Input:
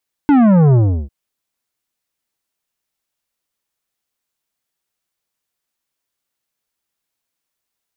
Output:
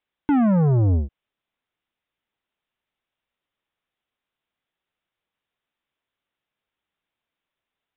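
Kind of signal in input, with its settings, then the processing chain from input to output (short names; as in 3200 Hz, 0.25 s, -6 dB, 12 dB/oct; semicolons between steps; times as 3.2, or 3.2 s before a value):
sub drop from 300 Hz, over 0.80 s, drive 11.5 dB, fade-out 0.35 s, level -8.5 dB
limiter -16 dBFS; downsampling 8000 Hz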